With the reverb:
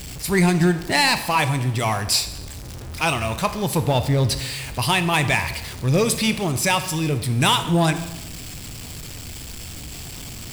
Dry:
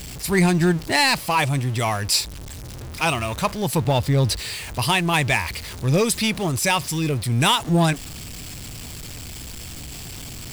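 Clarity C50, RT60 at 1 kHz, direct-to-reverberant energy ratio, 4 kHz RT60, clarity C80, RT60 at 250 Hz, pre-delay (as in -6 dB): 11.5 dB, 0.95 s, 10.0 dB, 0.95 s, 13.5 dB, 1.2 s, 18 ms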